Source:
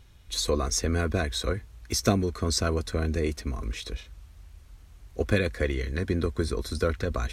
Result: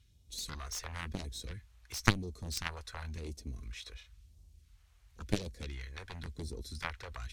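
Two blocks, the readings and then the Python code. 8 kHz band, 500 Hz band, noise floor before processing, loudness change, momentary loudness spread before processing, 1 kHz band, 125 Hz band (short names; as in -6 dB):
-11.0 dB, -18.5 dB, -52 dBFS, -11.0 dB, 9 LU, -8.0 dB, -11.0 dB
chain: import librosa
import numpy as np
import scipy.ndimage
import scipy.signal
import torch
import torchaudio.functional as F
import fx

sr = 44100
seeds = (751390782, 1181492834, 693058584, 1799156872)

y = scipy.signal.sosfilt(scipy.signal.butter(2, 48.0, 'highpass', fs=sr, output='sos'), x)
y = fx.cheby_harmonics(y, sr, harmonics=(3, 6, 7), levels_db=(-9, -38, -40), full_scale_db=-6.0)
y = fx.phaser_stages(y, sr, stages=2, low_hz=210.0, high_hz=1500.0, hz=0.96, feedback_pct=40)
y = y * librosa.db_to_amplitude(7.0)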